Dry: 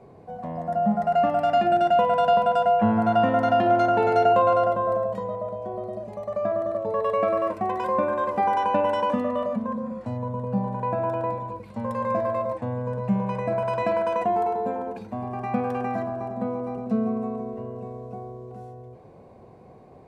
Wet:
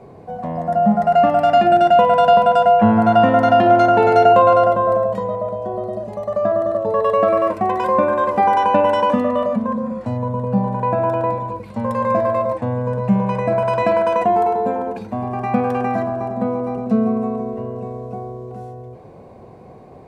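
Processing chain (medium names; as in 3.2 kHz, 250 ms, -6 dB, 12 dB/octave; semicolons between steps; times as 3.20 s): 5.51–7.29 s: band-stop 2.3 kHz, Q 8.4; trim +7.5 dB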